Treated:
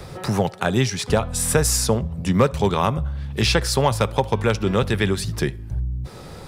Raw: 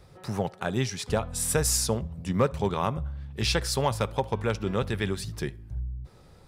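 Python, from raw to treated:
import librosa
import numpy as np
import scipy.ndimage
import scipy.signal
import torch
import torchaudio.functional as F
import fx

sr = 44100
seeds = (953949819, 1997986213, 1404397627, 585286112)

y = fx.band_squash(x, sr, depth_pct=40)
y = y * librosa.db_to_amplitude(7.5)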